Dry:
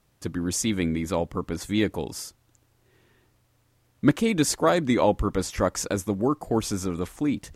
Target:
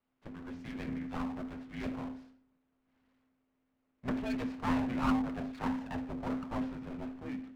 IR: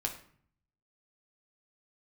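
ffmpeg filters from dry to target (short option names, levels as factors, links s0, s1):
-filter_complex "[0:a]highpass=260,equalizer=f=280:t=q:w=4:g=-10,equalizer=f=1100:t=q:w=4:g=-9,equalizer=f=1800:t=q:w=4:g=-8,lowpass=f=2200:w=0.5412,lowpass=f=2200:w=1.3066[s0];[1:a]atrim=start_sample=2205[s1];[s0][s1]afir=irnorm=-1:irlink=0,aeval=exprs='abs(val(0))':c=same,afreqshift=-260,volume=0.398"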